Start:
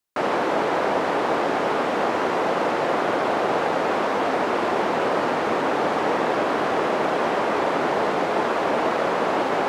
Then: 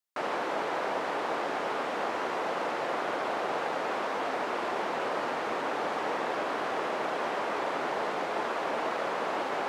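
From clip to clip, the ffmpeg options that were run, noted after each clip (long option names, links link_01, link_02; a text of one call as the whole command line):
ffmpeg -i in.wav -af "lowshelf=frequency=400:gain=-8.5,volume=-7dB" out.wav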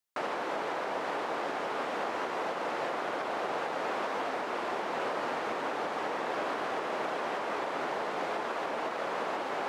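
ffmpeg -i in.wav -af "alimiter=level_in=1dB:limit=-24dB:level=0:latency=1:release=453,volume=-1dB,volume=1.5dB" out.wav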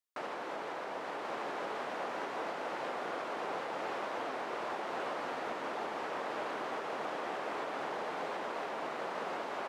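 ffmpeg -i in.wav -af "aecho=1:1:1087:0.708,volume=-6.5dB" out.wav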